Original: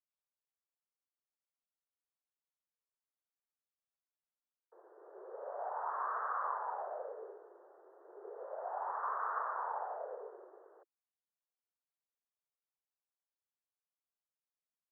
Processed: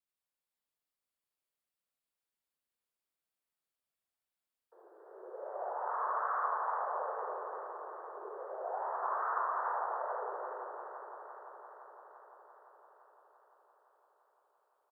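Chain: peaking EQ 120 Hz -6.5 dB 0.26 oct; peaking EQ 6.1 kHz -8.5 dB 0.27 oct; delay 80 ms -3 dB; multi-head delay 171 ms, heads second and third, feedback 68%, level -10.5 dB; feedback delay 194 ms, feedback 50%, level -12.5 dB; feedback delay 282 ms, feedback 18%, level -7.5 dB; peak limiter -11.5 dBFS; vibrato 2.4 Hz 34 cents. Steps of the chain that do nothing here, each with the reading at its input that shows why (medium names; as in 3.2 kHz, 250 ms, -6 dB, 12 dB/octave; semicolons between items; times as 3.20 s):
peaking EQ 120 Hz: input has nothing below 320 Hz; peaking EQ 6.1 kHz: input has nothing above 1.9 kHz; peak limiter -11.5 dBFS: peak at its input -22.0 dBFS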